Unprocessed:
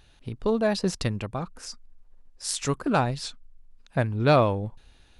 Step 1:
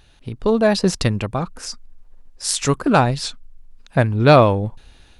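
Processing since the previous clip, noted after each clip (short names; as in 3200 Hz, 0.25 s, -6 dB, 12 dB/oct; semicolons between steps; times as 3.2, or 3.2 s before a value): AGC gain up to 4 dB; gain +4.5 dB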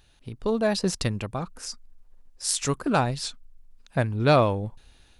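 high shelf 5900 Hz +6 dB; gain -8 dB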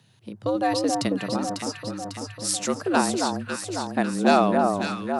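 echo with dull and thin repeats by turns 0.274 s, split 1200 Hz, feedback 77%, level -3 dB; frequency shift +90 Hz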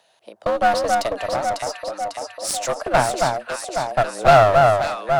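resonant high-pass 640 Hz, resonance Q 4.7; one-sided clip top -25 dBFS; gain +2 dB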